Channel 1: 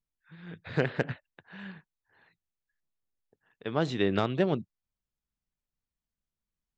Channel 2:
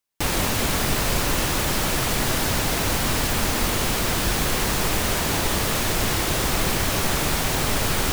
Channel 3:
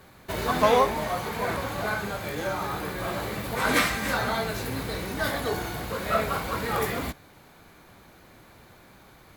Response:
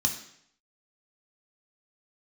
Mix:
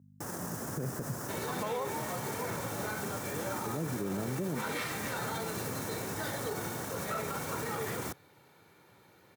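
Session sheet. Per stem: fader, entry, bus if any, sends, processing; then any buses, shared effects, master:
-1.5 dB, 0.00 s, no send, boxcar filter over 46 samples
-10.0 dB, 0.00 s, no send, hum 50 Hz, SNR 22 dB; high-order bell 3.1 kHz -16 dB 1.3 oct; peak limiter -19.5 dBFS, peak gain reduction 9 dB
-9.0 dB, 1.00 s, no send, comb 2.2 ms, depth 41%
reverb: none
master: high-pass 110 Hz 24 dB/octave; bass shelf 230 Hz +4 dB; peak limiter -26 dBFS, peak gain reduction 11.5 dB

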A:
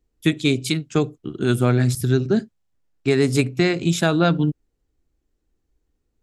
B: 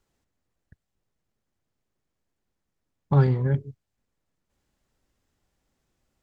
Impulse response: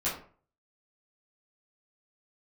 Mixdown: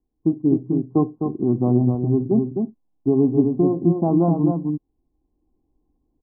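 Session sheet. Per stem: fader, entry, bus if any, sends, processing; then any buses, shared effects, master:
+1.5 dB, 0.00 s, no send, echo send -5.5 dB, none
-16.0 dB, 0.00 s, no send, no echo send, none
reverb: none
echo: delay 257 ms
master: level rider gain up to 7 dB; rippled Chebyshev low-pass 1.1 kHz, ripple 9 dB

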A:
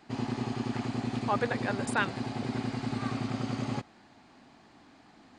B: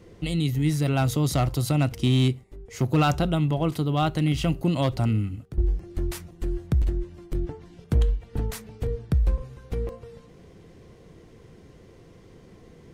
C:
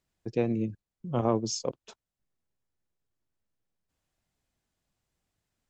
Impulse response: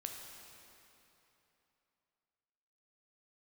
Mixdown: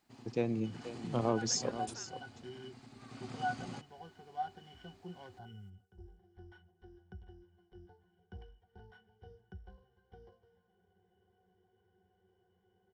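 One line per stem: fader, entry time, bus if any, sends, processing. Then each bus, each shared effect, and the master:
0.62 s -20.5 dB -> 0.84 s -13 dB -> 1.70 s -13 dB -> 2.11 s -21 dB -> 2.97 s -21 dB -> 3.31 s -11 dB, 0.00 s, no send, no echo send, peak limiter -24.5 dBFS, peak gain reduction 10.5 dB
-1.5 dB, 0.40 s, no send, no echo send, sorted samples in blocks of 8 samples; three-band isolator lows -19 dB, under 570 Hz, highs -20 dB, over 3.5 kHz; pitch-class resonator F#, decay 0.12 s
-5.5 dB, 0.00 s, no send, echo send -12.5 dB, none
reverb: none
echo: delay 481 ms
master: treble shelf 5 kHz +10.5 dB

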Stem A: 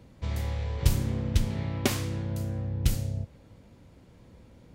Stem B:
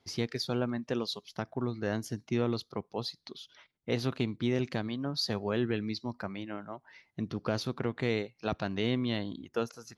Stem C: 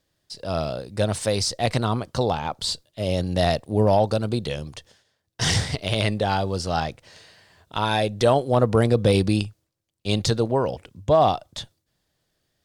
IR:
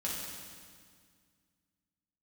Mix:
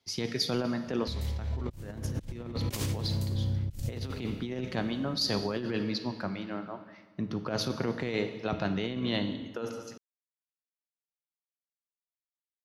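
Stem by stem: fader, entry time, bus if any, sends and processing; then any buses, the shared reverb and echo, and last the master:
-1.0 dB, 0.85 s, send -14.5 dB, peaking EQ 1.1 kHz -5 dB 2.7 oct
-1.5 dB, 0.00 s, send -8.5 dB, none
mute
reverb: on, RT60 1.9 s, pre-delay 3 ms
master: compressor with a negative ratio -31 dBFS, ratio -0.5; three bands expanded up and down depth 40%

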